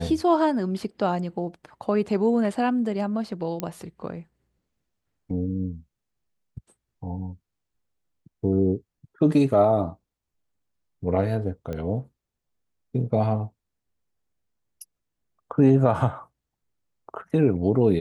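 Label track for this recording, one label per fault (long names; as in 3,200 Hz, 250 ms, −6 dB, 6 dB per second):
3.600000	3.600000	click −14 dBFS
11.730000	11.730000	click −20 dBFS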